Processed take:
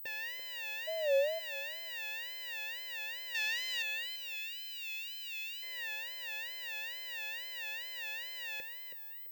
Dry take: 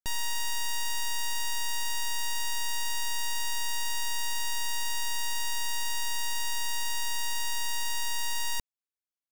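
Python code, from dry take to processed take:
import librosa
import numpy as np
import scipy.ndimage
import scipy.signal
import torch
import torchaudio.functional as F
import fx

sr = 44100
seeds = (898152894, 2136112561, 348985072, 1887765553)

y = fx.peak_eq(x, sr, hz=4300.0, db=9.5, octaves=2.6, at=(3.35, 3.83))
y = fx.spec_box(y, sr, start_s=4.03, length_s=1.6, low_hz=340.0, high_hz=1900.0, gain_db=-19)
y = fx.quant_dither(y, sr, seeds[0], bits=8, dither='none')
y = fx.high_shelf(y, sr, hz=6300.0, db=6.0)
y = fx.echo_feedback(y, sr, ms=332, feedback_pct=33, wet_db=-6.5)
y = fx.dmg_tone(y, sr, hz=600.0, level_db=-30.0, at=(0.86, 1.38), fade=0.02)
y = y + 10.0 ** (-21.0 / 20.0) * np.pad(y, (int(506 * sr / 1000.0), 0))[:len(y)]
y = fx.wow_flutter(y, sr, seeds[1], rate_hz=2.1, depth_cents=150.0)
y = fx.vowel_filter(y, sr, vowel='e')
y = fx.pwm(y, sr, carrier_hz=16000.0)
y = y * 10.0 ** (7.0 / 20.0)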